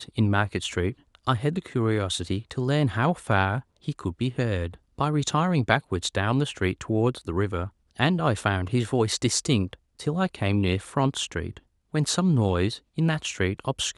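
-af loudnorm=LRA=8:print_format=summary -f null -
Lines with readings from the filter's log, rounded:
Input Integrated:    -26.0 LUFS
Input True Peak:      -3.0 dBTP
Input LRA:             0.8 LU
Input Threshold:     -36.1 LUFS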